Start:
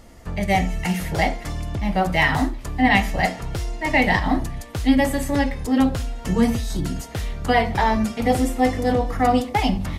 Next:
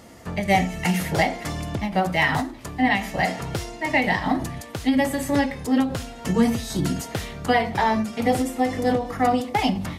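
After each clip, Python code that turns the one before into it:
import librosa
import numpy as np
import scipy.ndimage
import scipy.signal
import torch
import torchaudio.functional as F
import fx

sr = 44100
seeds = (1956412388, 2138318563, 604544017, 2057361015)

y = scipy.signal.sosfilt(scipy.signal.butter(2, 110.0, 'highpass', fs=sr, output='sos'), x)
y = fx.rider(y, sr, range_db=4, speed_s=0.5)
y = fx.end_taper(y, sr, db_per_s=120.0)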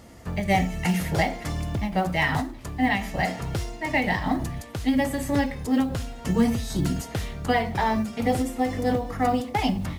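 y = fx.low_shelf(x, sr, hz=93.0, db=11.5)
y = fx.mod_noise(y, sr, seeds[0], snr_db=34)
y = y * 10.0 ** (-3.5 / 20.0)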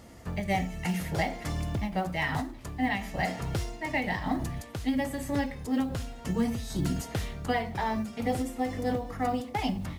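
y = fx.rider(x, sr, range_db=4, speed_s=0.5)
y = y * 10.0 ** (-5.5 / 20.0)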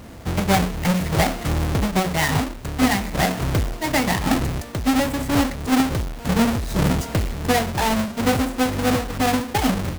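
y = fx.halfwave_hold(x, sr)
y = y * 10.0 ** (5.5 / 20.0)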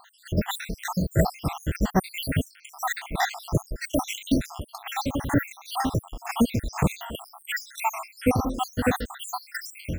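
y = fx.spec_dropout(x, sr, seeds[1], share_pct=79)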